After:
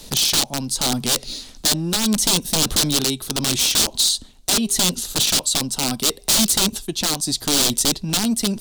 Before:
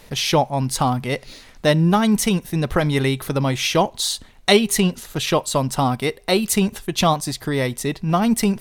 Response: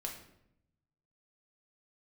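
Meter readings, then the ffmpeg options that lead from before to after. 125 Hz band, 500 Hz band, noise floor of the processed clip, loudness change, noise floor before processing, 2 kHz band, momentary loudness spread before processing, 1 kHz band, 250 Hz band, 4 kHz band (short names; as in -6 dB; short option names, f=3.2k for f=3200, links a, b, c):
-7.5 dB, -9.0 dB, -44 dBFS, +1.5 dB, -47 dBFS, -3.5 dB, 7 LU, -8.0 dB, -3.5 dB, +6.5 dB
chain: -filter_complex "[0:a]acrossover=split=260|610|1900[a][b][c][d];[a]asoftclip=type=tanh:threshold=-25dB[e];[d]alimiter=limit=-17dB:level=0:latency=1:release=211[f];[e][b][c][f]amix=inputs=4:normalize=0,tremolo=f=0.78:d=0.56,aeval=exprs='(mod(9.44*val(0)+1,2)-1)/9.44':c=same,equalizer=f=125:t=o:w=1:g=-5,equalizer=f=250:t=o:w=1:g=4,equalizer=f=500:t=o:w=1:g=-4,equalizer=f=1k:t=o:w=1:g=-4,equalizer=f=2k:t=o:w=1:g=-11,equalizer=f=4k:t=o:w=1:g=7,equalizer=f=8k:t=o:w=1:g=6,volume=6dB"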